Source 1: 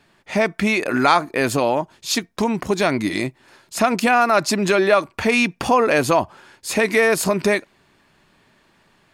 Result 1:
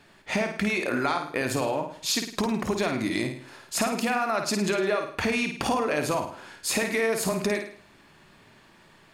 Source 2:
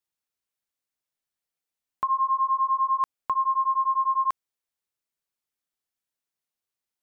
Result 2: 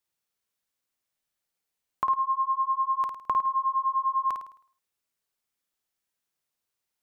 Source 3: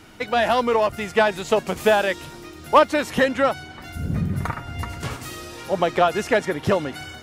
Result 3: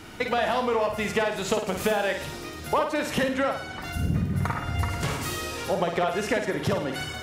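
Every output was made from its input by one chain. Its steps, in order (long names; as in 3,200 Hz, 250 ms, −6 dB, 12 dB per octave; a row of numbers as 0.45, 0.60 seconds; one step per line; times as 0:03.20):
downward compressor 6 to 1, threshold −26 dBFS
on a send: flutter between parallel walls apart 9.1 metres, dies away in 0.51 s
on the sum: loudness normalisation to −27 LKFS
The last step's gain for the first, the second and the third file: +1.5, +3.0, +3.0 decibels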